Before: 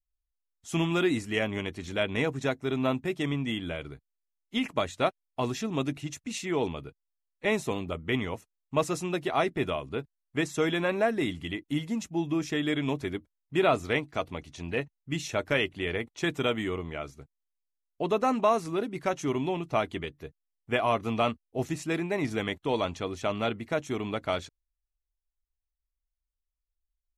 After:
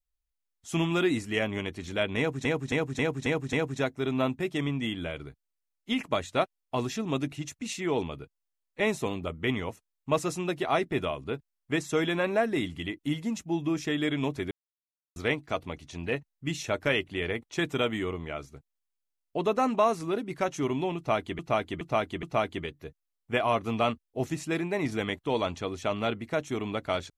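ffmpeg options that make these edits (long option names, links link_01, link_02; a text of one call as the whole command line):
ffmpeg -i in.wav -filter_complex "[0:a]asplit=11[link_01][link_02][link_03][link_04][link_05][link_06][link_07][link_08][link_09][link_10][link_11];[link_01]atrim=end=2.452[link_12];[link_02]atrim=start=2.178:end=2.452[link_13];[link_03]atrim=start=2.178:end=2.452[link_14];[link_04]atrim=start=2.178:end=2.452[link_15];[link_05]atrim=start=2.178:end=2.452[link_16];[link_06]atrim=start=2.178:end=13.16,asetpts=PTS-STARTPTS,afade=type=out:start_time=10.978:duration=0.004:curve=hsin[link_17];[link_07]atrim=start=13.16:end=13.81,asetpts=PTS-STARTPTS,volume=0[link_18];[link_08]atrim=start=13.81:end=20.042,asetpts=PTS-STARTPTS,afade=type=in:duration=0.004:curve=hsin[link_19];[link_09]atrim=start=19.618:end=20.042[link_20];[link_10]atrim=start=19.618:end=20.042[link_21];[link_11]atrim=start=19.618[link_22];[link_12][link_13]acrossfade=duration=0.004:curve1=hsin:curve2=hsin[link_23];[link_23][link_14]acrossfade=duration=0.004:curve1=hsin:curve2=hsin[link_24];[link_24][link_15]acrossfade=duration=0.004:curve1=hsin:curve2=hsin[link_25];[link_25][link_16]acrossfade=duration=0.004:curve1=hsin:curve2=hsin[link_26];[link_17][link_18][link_19]concat=n=3:v=0:a=1[link_27];[link_26][link_27]acrossfade=duration=0.004:curve1=hsin:curve2=hsin[link_28];[link_28][link_20]acrossfade=duration=0.004:curve1=hsin:curve2=hsin[link_29];[link_29][link_21]acrossfade=duration=0.004:curve1=hsin:curve2=hsin[link_30];[link_30][link_22]acrossfade=duration=0.004:curve1=hsin:curve2=hsin" out.wav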